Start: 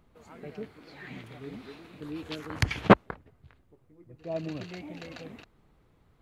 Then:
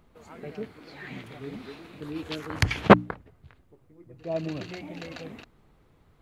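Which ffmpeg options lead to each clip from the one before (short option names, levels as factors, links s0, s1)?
-af "bandreject=f=60:t=h:w=6,bandreject=f=120:t=h:w=6,bandreject=f=180:t=h:w=6,bandreject=f=240:t=h:w=6,bandreject=f=300:t=h:w=6,volume=1.5"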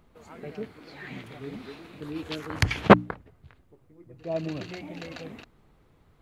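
-af anull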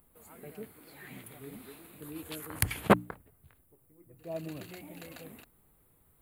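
-af "aexciter=amount=12.9:drive=7.4:freq=8500,volume=0.398"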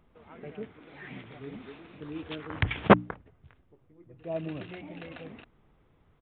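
-af "aresample=8000,aresample=44100,volume=1.68"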